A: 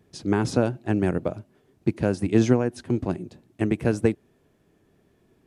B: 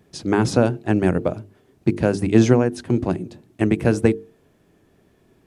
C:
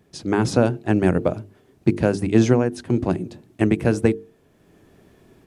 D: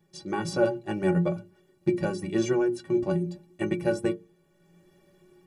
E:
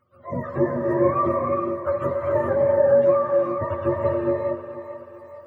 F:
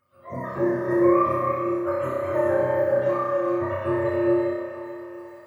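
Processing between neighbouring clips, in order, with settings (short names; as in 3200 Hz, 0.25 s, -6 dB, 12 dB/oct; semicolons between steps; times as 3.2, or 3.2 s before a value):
notches 50/100/150/200/250/300/350/400/450 Hz; gain +5.5 dB
AGC gain up to 7.5 dB; gain -2 dB
notches 60/120/180/240 Hz; metallic resonator 170 Hz, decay 0.23 s, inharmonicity 0.03; gain +4.5 dB
spectrum mirrored in octaves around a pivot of 450 Hz; split-band echo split 470 Hz, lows 0.238 s, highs 0.437 s, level -10 dB; non-linear reverb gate 0.45 s rising, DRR 0.5 dB; gain +3 dB
high shelf 2200 Hz +10.5 dB; on a send: flutter echo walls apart 5.4 m, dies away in 1.2 s; on the sum: gain -6 dB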